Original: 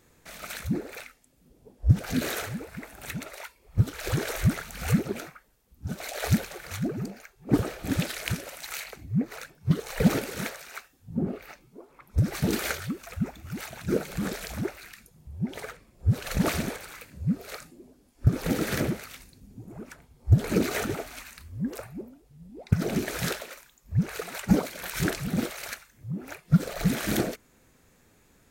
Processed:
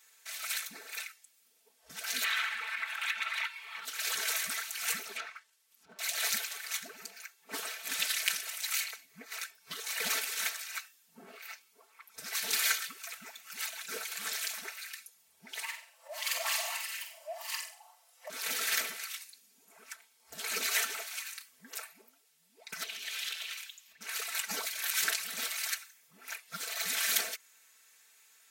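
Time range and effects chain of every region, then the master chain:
2.24–3.85 overdrive pedal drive 18 dB, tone 2900 Hz, clips at -9.5 dBFS + band shelf 1800 Hz +12 dB 2.5 oct + compressor 3:1, threshold -36 dBFS
5.16–5.99 treble ducked by the level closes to 750 Hz, closed at -31.5 dBFS + sample leveller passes 1
15.63–18.3 frequency shift +480 Hz + compressor 2:1, threshold -31 dBFS + flutter echo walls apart 8 m, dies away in 0.4 s
22.83–24.01 bell 3100 Hz +13 dB 1.1 oct + compressor 4:1, threshold -39 dBFS
whole clip: Bessel high-pass 2300 Hz, order 2; comb 4.5 ms, depth 99%; gain +2.5 dB

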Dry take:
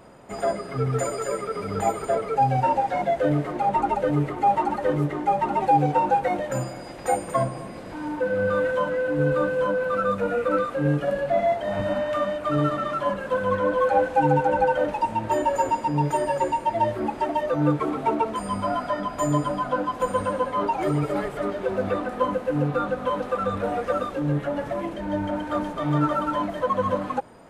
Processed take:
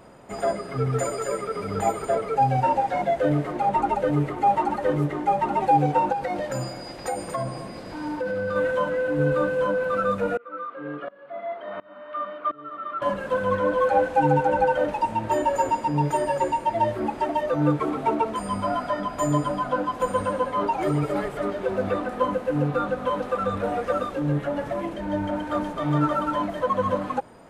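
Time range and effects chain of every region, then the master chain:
6.12–8.56 bell 4800 Hz +8 dB 0.38 oct + compressor, threshold -23 dBFS
10.37–13.02 speaker cabinet 420–3000 Hz, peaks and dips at 560 Hz -6 dB, 820 Hz -9 dB, 1200 Hz +6 dB, 1800 Hz -5 dB, 2600 Hz -7 dB + tremolo saw up 1.4 Hz, depth 95%
whole clip: dry

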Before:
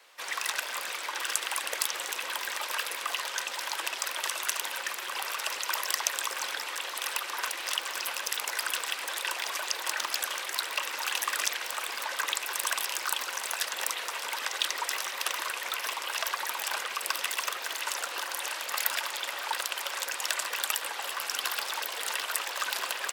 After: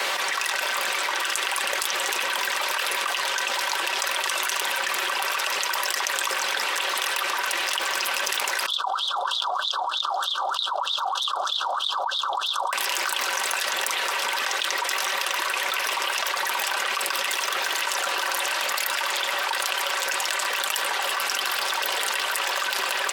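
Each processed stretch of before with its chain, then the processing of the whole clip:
8.66–12.73 elliptic band-stop 1300–3400 Hz, stop band 60 dB + wah 3.2 Hz 700–3800 Hz, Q 13
whole clip: high shelf 6700 Hz -6 dB; comb 5.2 ms, depth 42%; fast leveller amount 100%

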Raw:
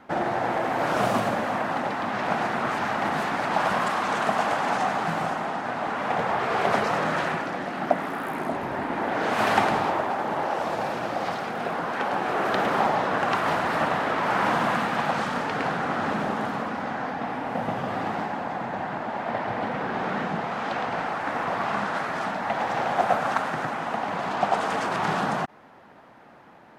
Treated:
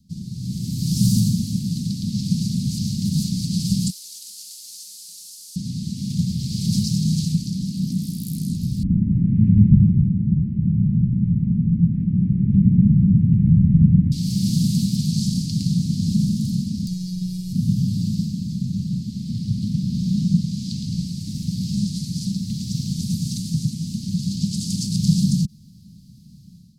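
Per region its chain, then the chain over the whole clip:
3.9–5.56 delta modulation 64 kbps, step -32 dBFS + ladder high-pass 780 Hz, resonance 55%
8.83–14.12 steep low-pass 2100 Hz 48 dB/oct + low shelf 200 Hz +11.5 dB + echo 0.248 s -8 dB
16.87–17.53 high shelf 8500 Hz +8 dB + robotiser 182 Hz + comb 2.1 ms, depth 75%
whole clip: Chebyshev band-stop 190–4500 Hz, order 4; low shelf 360 Hz +3.5 dB; AGC gain up to 11 dB; gain +4 dB

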